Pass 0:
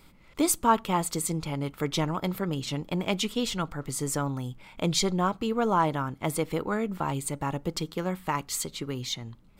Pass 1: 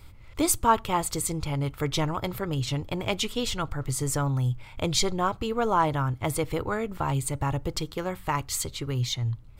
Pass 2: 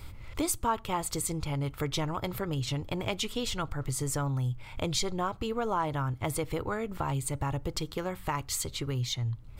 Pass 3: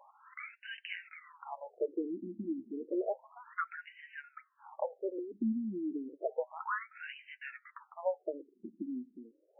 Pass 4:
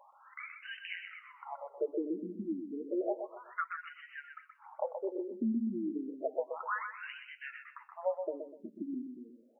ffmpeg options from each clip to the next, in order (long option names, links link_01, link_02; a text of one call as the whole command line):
ffmpeg -i in.wav -af "lowshelf=frequency=140:width_type=q:width=3:gain=8.5,volume=1.5dB" out.wav
ffmpeg -i in.wav -af "acompressor=threshold=-40dB:ratio=2,volume=4.5dB" out.wav
ffmpeg -i in.wav -af "flanger=delay=3.6:depth=5.5:regen=41:speed=0.21:shape=sinusoidal,afftfilt=real='re*between(b*sr/1024,250*pow(2200/250,0.5+0.5*sin(2*PI*0.31*pts/sr))/1.41,250*pow(2200/250,0.5+0.5*sin(2*PI*0.31*pts/sr))*1.41)':imag='im*between(b*sr/1024,250*pow(2200/250,0.5+0.5*sin(2*PI*0.31*pts/sr))/1.41,250*pow(2200/250,0.5+0.5*sin(2*PI*0.31*pts/sr))*1.41)':win_size=1024:overlap=0.75,volume=7dB" out.wav
ffmpeg -i in.wav -af "aecho=1:1:125|250|375|500:0.447|0.138|0.0429|0.0133" out.wav